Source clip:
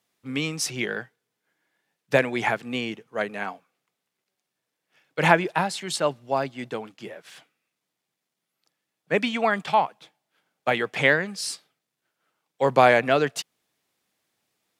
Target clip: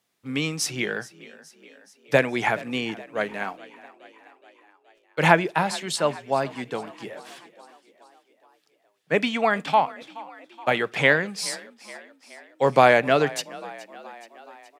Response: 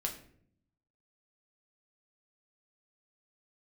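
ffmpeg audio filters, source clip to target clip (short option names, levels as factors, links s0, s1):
-filter_complex "[0:a]asettb=1/sr,asplit=3[s0][s1][s2];[s0]atrim=end=3.214[s3];[s1]atrim=start=3.21:end=5.22,asetpts=PTS-STARTPTS,afade=t=in:d=0.004:c=qsin,afade=t=out:st=2.006:d=0.004:c=qsin,aeval=exprs='sgn(val(0))*max(abs(val(0))-0.00126,0)':c=same[s4];[s2]atrim=start=5.216[s5];[s3][s4]acrossfade=d=0.004:c1=hsin:c2=qsin[s6];[s6][s5]acrossfade=d=0.004:c1=qsin:c2=hsin,asplit=6[s7][s8][s9][s10][s11][s12];[s8]adelay=423,afreqshift=36,volume=0.106[s13];[s9]adelay=846,afreqshift=72,volume=0.0646[s14];[s10]adelay=1269,afreqshift=108,volume=0.0394[s15];[s11]adelay=1692,afreqshift=144,volume=0.024[s16];[s12]adelay=2115,afreqshift=180,volume=0.0146[s17];[s7][s13][s14][s15][s16][s17]amix=inputs=6:normalize=0,asplit=2[s18][s19];[1:a]atrim=start_sample=2205,atrim=end_sample=3969[s20];[s19][s20]afir=irnorm=-1:irlink=0,volume=0.126[s21];[s18][s21]amix=inputs=2:normalize=0"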